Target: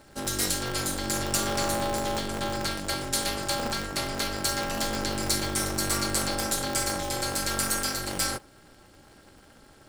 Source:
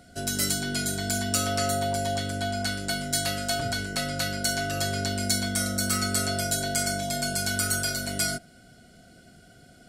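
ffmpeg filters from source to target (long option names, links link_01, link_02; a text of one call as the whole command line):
ffmpeg -i in.wav -af "aeval=exprs='val(0)*sgn(sin(2*PI*120*n/s))':channel_layout=same,volume=-1dB" out.wav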